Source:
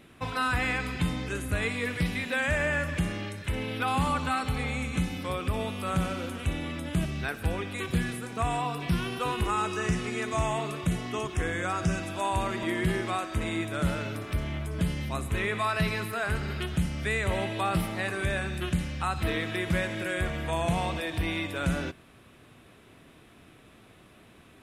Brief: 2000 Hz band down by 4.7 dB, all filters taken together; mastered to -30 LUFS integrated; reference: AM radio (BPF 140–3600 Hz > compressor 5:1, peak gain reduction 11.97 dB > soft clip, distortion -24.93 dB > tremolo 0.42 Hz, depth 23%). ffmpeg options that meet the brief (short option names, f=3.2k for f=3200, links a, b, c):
-af "highpass=140,lowpass=3.6k,equalizer=f=2k:t=o:g=-5.5,acompressor=threshold=-37dB:ratio=5,asoftclip=threshold=-28.5dB,tremolo=f=0.42:d=0.23,volume=12dB"